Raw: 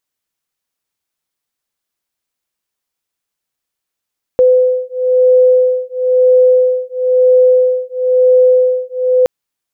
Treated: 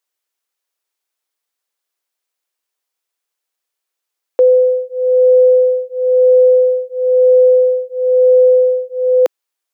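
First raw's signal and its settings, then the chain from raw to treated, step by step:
two tones that beat 506 Hz, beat 1 Hz, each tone −10.5 dBFS 4.87 s
high-pass filter 350 Hz 24 dB per octave

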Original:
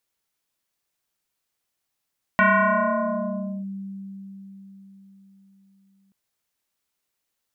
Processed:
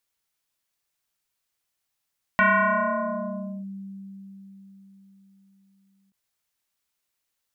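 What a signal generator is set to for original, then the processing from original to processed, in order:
two-operator FM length 3.73 s, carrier 195 Hz, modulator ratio 2.16, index 4.4, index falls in 1.26 s linear, decay 4.73 s, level −13 dB
parametric band 320 Hz −4.5 dB 2.6 octaves
every ending faded ahead of time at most 320 dB per second

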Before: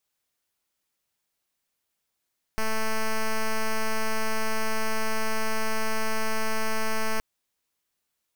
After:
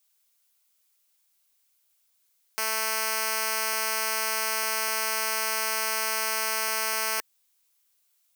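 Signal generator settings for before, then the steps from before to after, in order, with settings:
pulse wave 220 Hz, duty 6% −24 dBFS 4.62 s
high-pass filter 350 Hz 12 dB per octave
spectral tilt +3 dB per octave
notch filter 1,800 Hz, Q 17

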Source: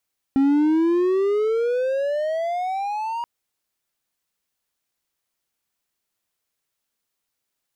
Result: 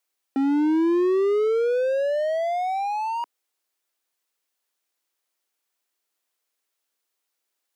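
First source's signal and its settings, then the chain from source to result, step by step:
pitch glide with a swell triangle, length 2.88 s, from 268 Hz, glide +22 semitones, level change −10.5 dB, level −12 dB
high-pass filter 290 Hz 24 dB per octave

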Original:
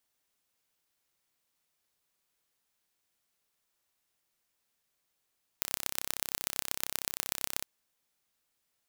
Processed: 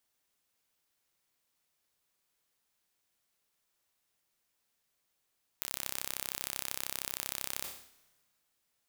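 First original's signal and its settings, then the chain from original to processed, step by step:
impulse train 32.9 per second, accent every 4, −2 dBFS 2.01 s
brickwall limiter −7 dBFS
dense smooth reverb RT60 1.6 s, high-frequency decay 0.95×, pre-delay 110 ms, DRR 18.5 dB
level that may fall only so fast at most 93 dB per second

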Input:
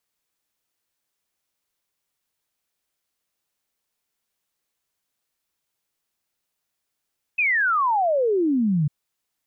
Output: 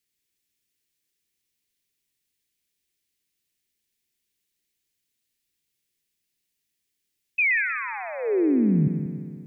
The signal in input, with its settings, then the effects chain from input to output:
exponential sine sweep 2,600 Hz → 140 Hz 1.50 s −17.5 dBFS
flat-topped bell 880 Hz −15 dB
on a send: echo machine with several playback heads 62 ms, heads second and third, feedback 60%, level −10 dB

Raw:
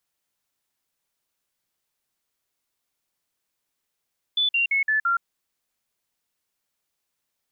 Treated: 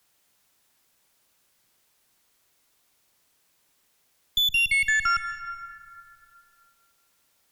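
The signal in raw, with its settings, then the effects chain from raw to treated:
stepped sweep 3,480 Hz down, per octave 3, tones 5, 0.12 s, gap 0.05 s −18.5 dBFS
harmonic generator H 4 −14 dB, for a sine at −18 dBFS
dense smooth reverb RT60 1.9 s, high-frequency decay 0.5×, pre-delay 120 ms, DRR 11.5 dB
multiband upward and downward compressor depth 40%

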